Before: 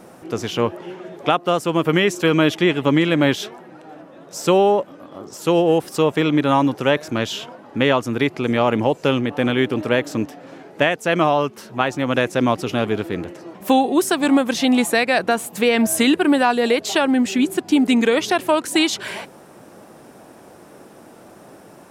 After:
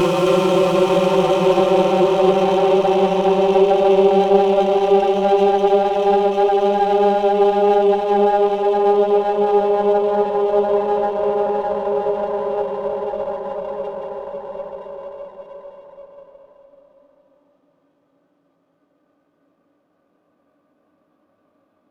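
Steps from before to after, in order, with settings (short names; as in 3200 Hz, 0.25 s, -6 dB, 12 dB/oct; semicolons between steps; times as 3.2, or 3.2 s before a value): spectral noise reduction 22 dB; Paulstretch 41×, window 0.25 s, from 4.5; running maximum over 5 samples; gain -1 dB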